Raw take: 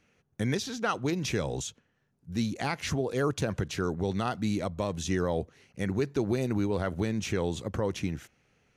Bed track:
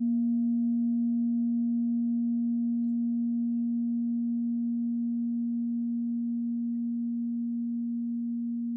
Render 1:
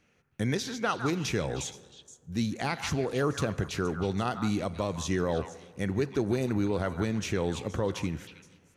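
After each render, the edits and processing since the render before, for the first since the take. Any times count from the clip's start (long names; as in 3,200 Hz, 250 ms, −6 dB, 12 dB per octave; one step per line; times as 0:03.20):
echo through a band-pass that steps 157 ms, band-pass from 1,200 Hz, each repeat 1.4 octaves, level −6 dB
dense smooth reverb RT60 1.7 s, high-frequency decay 0.45×, DRR 16 dB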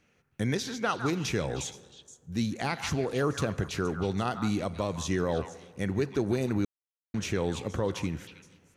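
0:06.65–0:07.14: silence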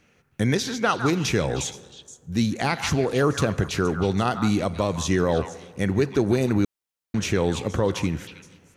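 level +7 dB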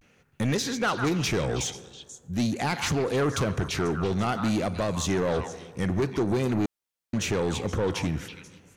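pitch vibrato 0.47 Hz 71 cents
soft clipping −20 dBFS, distortion −11 dB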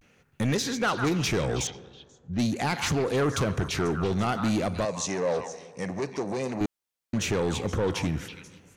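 0:01.67–0:02.39: high-frequency loss of the air 210 metres
0:04.85–0:06.61: loudspeaker in its box 220–9,200 Hz, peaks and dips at 230 Hz −4 dB, 340 Hz −9 dB, 540 Hz +3 dB, 1,400 Hz −9 dB, 3,300 Hz −9 dB, 5,700 Hz +4 dB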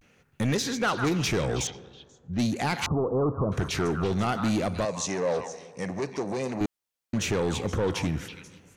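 0:02.86–0:03.52: Butterworth low-pass 1,200 Hz 72 dB per octave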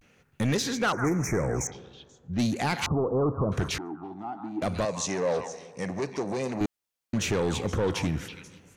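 0:00.92–0:01.72: elliptic band-stop filter 2,100–5,900 Hz
0:03.78–0:04.62: pair of resonant band-passes 500 Hz, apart 1.4 octaves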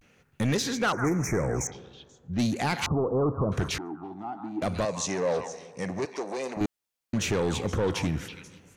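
0:06.05–0:06.57: high-pass filter 370 Hz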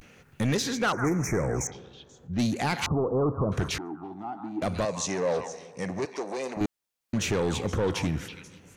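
upward compression, threshold −45 dBFS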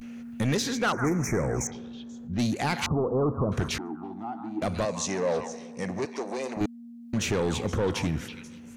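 mix in bed track −14 dB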